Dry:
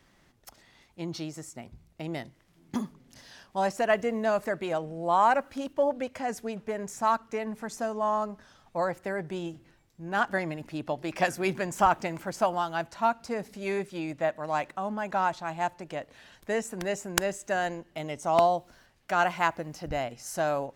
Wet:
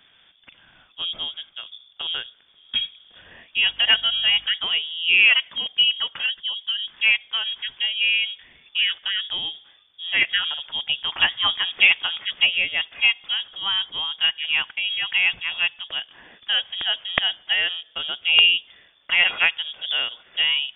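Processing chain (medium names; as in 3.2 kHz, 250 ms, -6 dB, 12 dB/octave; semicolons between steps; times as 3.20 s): 6.26–6.88 s: resonances exaggerated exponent 1.5; frequency inversion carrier 3.5 kHz; 3.61–4.45 s: mains buzz 50 Hz, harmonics 6, -61 dBFS -6 dB/octave; trim +6.5 dB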